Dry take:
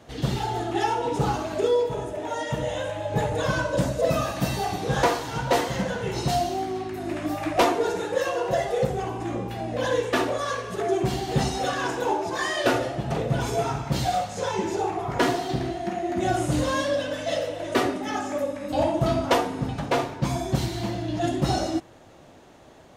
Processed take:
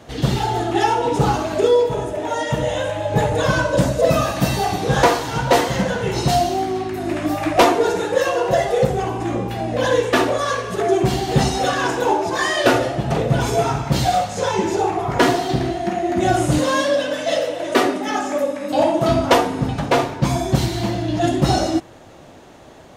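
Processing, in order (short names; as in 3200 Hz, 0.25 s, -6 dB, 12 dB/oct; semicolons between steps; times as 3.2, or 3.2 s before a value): 16.58–19.09 HPF 200 Hz 12 dB/oct; gain +7 dB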